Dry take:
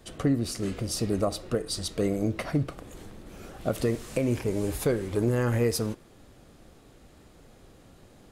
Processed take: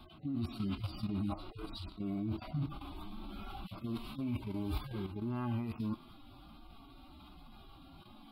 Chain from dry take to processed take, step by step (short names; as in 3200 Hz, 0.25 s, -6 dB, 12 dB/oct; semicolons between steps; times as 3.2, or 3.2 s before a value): median-filter separation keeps harmonic; reverse; compressor 10:1, threshold -36 dBFS, peak gain reduction 15.5 dB; reverse; ten-band EQ 125 Hz -4 dB, 250 Hz +6 dB, 1000 Hz +6 dB, 4000 Hz +8 dB, 8000 Hz -12 dB; level quantiser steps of 10 dB; fixed phaser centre 1800 Hz, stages 6; gain +8 dB